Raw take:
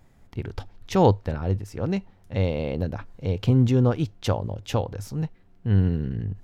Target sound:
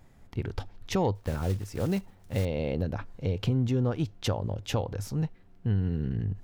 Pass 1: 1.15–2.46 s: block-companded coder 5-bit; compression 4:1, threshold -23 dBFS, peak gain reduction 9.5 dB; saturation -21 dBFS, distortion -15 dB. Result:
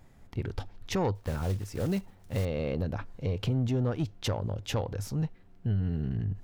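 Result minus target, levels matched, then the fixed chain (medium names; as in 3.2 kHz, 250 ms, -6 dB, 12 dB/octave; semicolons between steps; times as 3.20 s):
saturation: distortion +11 dB
1.15–2.46 s: block-companded coder 5-bit; compression 4:1, threshold -23 dBFS, peak gain reduction 9.5 dB; saturation -13.5 dBFS, distortion -26 dB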